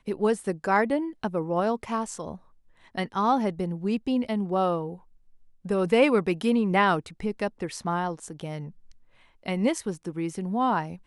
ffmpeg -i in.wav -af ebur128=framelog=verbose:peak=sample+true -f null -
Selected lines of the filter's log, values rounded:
Integrated loudness:
  I:         -26.7 LUFS
  Threshold: -37.4 LUFS
Loudness range:
  LRA:         5.7 LU
  Threshold: -47.4 LUFS
  LRA low:   -31.0 LUFS
  LRA high:  -25.3 LUFS
Sample peak:
  Peak:       -8.1 dBFS
True peak:
  Peak:       -8.1 dBFS